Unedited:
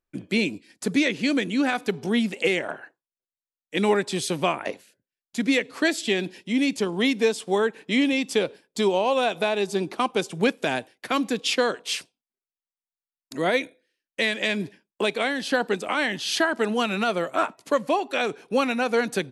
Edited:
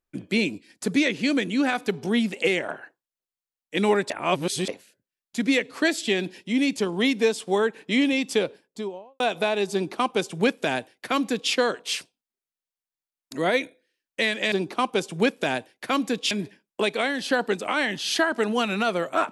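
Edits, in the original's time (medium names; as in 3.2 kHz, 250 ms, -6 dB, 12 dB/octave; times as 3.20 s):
4.10–4.68 s: reverse
8.33–9.20 s: studio fade out
9.73–11.52 s: copy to 14.52 s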